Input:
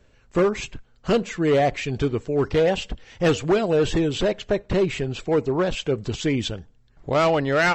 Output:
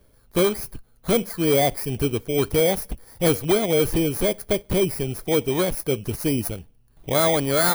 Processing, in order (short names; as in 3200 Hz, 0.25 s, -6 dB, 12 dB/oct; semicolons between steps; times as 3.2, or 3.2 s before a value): FFT order left unsorted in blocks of 16 samples